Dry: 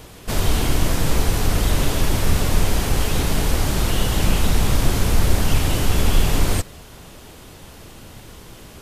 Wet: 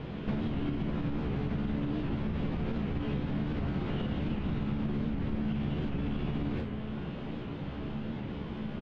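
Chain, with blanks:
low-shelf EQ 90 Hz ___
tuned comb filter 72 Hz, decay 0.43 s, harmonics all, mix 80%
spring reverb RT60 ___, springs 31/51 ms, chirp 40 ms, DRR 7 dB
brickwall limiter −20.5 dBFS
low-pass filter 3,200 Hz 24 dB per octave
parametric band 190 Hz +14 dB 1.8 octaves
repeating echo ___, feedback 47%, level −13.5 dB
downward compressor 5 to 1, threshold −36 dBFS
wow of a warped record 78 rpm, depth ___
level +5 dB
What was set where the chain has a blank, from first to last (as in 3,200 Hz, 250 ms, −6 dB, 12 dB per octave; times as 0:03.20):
−3.5 dB, 1.1 s, 70 ms, 100 cents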